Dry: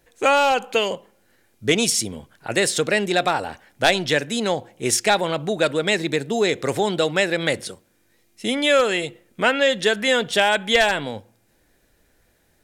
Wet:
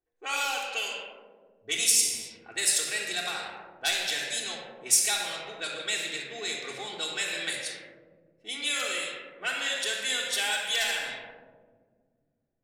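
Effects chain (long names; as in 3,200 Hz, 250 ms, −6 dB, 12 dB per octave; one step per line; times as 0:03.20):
first-order pre-emphasis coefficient 0.97
rectangular room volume 3,100 cubic metres, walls mixed, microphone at 3.5 metres
low-pass that shuts in the quiet parts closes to 530 Hz, open at −25 dBFS
level −2.5 dB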